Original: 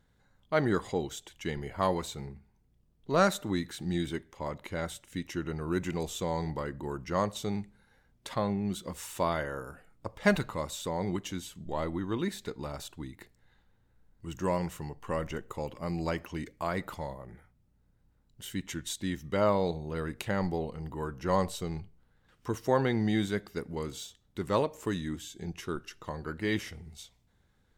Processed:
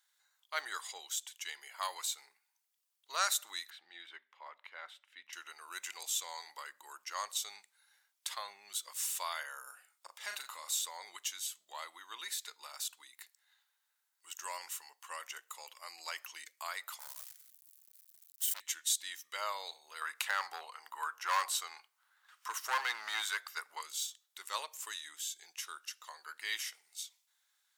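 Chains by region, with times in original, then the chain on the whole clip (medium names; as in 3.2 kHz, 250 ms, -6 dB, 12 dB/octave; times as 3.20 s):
3.70–5.33 s: distance through air 410 m + hum notches 60/120/180/240 Hz
9.63–10.79 s: doubling 38 ms -7.5 dB + compression 2.5:1, threshold -33 dBFS + resonant high-pass 210 Hz, resonance Q 2.2
16.99–18.60 s: zero-crossing glitches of -36.5 dBFS + gate -48 dBFS, range -17 dB + transformer saturation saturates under 1.8 kHz
20.01–23.81 s: hard clipper -24.5 dBFS + peaking EQ 1.2 kHz +11.5 dB 1.7 oct
whole clip: high-pass 1.1 kHz 24 dB/octave; peaking EQ 1.4 kHz -13.5 dB 2.9 oct; trim +9.5 dB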